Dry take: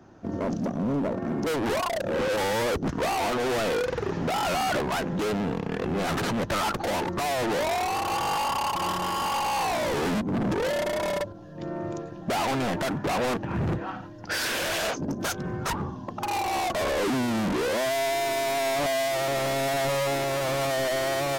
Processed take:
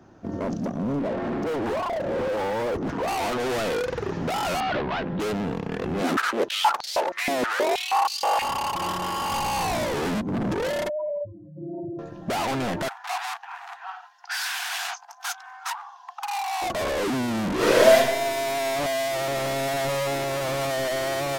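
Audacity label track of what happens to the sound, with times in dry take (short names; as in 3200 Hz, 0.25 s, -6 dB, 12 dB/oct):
0.990000	3.080000	overdrive pedal drive 26 dB, tone 1200 Hz, clips at -22 dBFS
4.600000	5.200000	LPF 4000 Hz 24 dB/oct
6.010000	8.420000	stepped high-pass 6.3 Hz 260–4600 Hz
9.290000	9.850000	tone controls bass +9 dB, treble +3 dB
10.890000	11.990000	spectral contrast raised exponent 3.5
12.880000	16.620000	Chebyshev high-pass 700 Hz, order 10
17.550000	17.960000	reverb throw, RT60 0.89 s, DRR -8.5 dB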